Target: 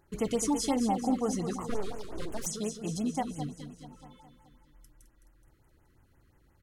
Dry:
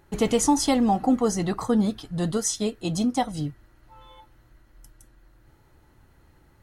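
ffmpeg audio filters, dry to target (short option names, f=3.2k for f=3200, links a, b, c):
-filter_complex "[0:a]aecho=1:1:212|424|636|848|1060|1272|1484:0.355|0.202|0.115|0.0657|0.0375|0.0213|0.0122,asplit=3[a][b][c];[a]afade=t=out:st=1.69:d=0.02[d];[b]aeval=exprs='abs(val(0))':c=same,afade=t=in:st=1.69:d=0.02,afade=t=out:st=2.45:d=0.02[e];[c]afade=t=in:st=2.45:d=0.02[f];[d][e][f]amix=inputs=3:normalize=0,afftfilt=real='re*(1-between(b*sr/1024,690*pow(4700/690,0.5+0.5*sin(2*PI*5.7*pts/sr))/1.41,690*pow(4700/690,0.5+0.5*sin(2*PI*5.7*pts/sr))*1.41))':imag='im*(1-between(b*sr/1024,690*pow(4700/690,0.5+0.5*sin(2*PI*5.7*pts/sr))/1.41,690*pow(4700/690,0.5+0.5*sin(2*PI*5.7*pts/sr))*1.41))':win_size=1024:overlap=0.75,volume=-8dB"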